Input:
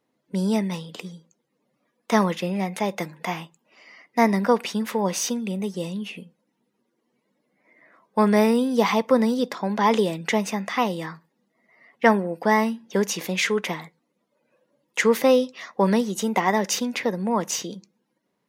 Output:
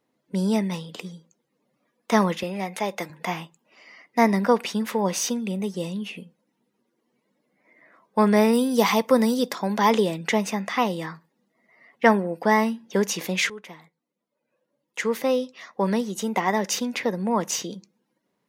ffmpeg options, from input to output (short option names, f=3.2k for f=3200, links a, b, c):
-filter_complex "[0:a]asettb=1/sr,asplit=3[a][b][c];[a]atrim=end=2.434[d];[b]atrim=start=2.43:end=3.1,asetpts=PTS-STARTPTS,afade=t=in:d=0.004:c=qsin,afade=t=out:st=0.666:d=0.004:c=qsin,highpass=f=330:p=1[e];[c]atrim=start=3.096[f];[d][e]acrossfade=d=0.004:c1=hsin:c2=qsin[g];[g][f]acrossfade=d=0.004:c1=qsin:c2=hsin,asettb=1/sr,asplit=3[h][i][j];[h]atrim=end=8.534[k];[i]atrim=start=8.53:end=9.91,asetpts=PTS-STARTPTS,afade=t=in:d=0.004:c=qsin,afade=t=out:st=1.376:d=0.004:c=qsin,highshelf=f=6.1k:g=11.5[l];[j]atrim=start=9.906[m];[k][l]acrossfade=d=0.004:c1=hsin:c2=qsin[n];[n][m]acrossfade=d=0.004:c1=qsin:c2=hsin,asplit=2[o][p];[o]atrim=end=13.5,asetpts=PTS-STARTPTS,afade=t=out:st=13.496:d=0.004:c=hsin:silence=0.149624[q];[p]atrim=start=13.5,asetpts=PTS-STARTPTS,afade=t=in:d=3.87:silence=0.149624[r];[q][r]concat=n=2:v=0:a=1"